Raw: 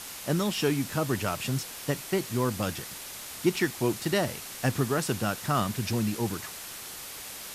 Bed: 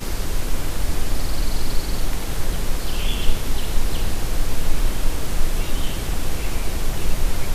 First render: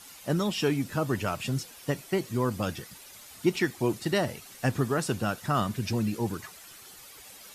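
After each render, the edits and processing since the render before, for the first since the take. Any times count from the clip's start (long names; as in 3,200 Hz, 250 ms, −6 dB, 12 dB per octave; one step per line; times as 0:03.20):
broadband denoise 11 dB, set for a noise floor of −41 dBFS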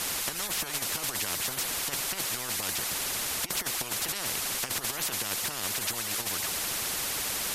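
compressor whose output falls as the input rises −30 dBFS, ratio −0.5
every bin compressed towards the loudest bin 10 to 1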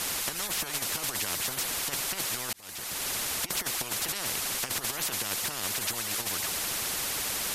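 0:02.53–0:03.09: fade in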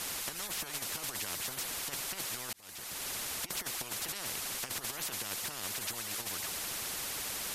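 level −6.5 dB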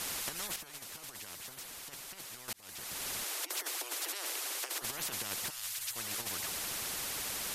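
0:00.56–0:02.48: clip gain −8.5 dB
0:03.24–0:04.82: Butterworth high-pass 290 Hz 96 dB per octave
0:05.50–0:05.96: guitar amp tone stack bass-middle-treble 10-0-10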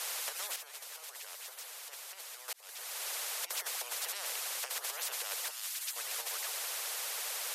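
Butterworth high-pass 450 Hz 48 dB per octave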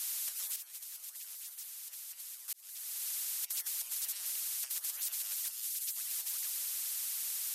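high-pass filter 360 Hz
first difference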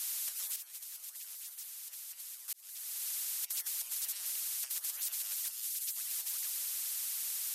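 no processing that can be heard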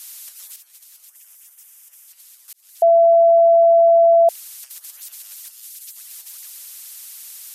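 0:01.08–0:02.08: parametric band 4,200 Hz −13 dB 0.44 octaves
0:02.82–0:04.29: beep over 672 Hz −8.5 dBFS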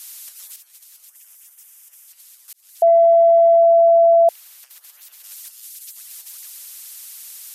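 0:02.86–0:03.59: transient designer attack +7 dB, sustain +2 dB
0:04.29–0:05.24: parametric band 8,600 Hz −8.5 dB 2.2 octaves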